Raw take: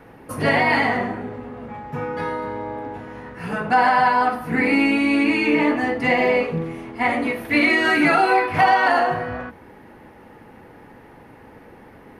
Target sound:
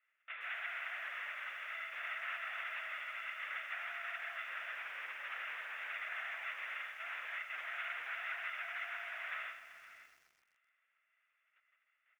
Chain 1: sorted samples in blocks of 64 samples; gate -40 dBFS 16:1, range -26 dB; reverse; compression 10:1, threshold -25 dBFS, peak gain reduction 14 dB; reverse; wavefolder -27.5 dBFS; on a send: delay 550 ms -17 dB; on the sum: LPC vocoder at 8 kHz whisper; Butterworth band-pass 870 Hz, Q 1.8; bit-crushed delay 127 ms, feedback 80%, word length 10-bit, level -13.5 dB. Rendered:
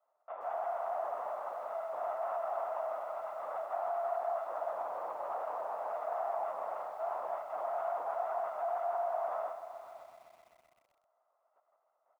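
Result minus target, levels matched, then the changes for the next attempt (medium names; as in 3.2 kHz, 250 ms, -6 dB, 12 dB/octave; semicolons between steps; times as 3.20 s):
2 kHz band -19.5 dB
change: Butterworth band-pass 2 kHz, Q 1.8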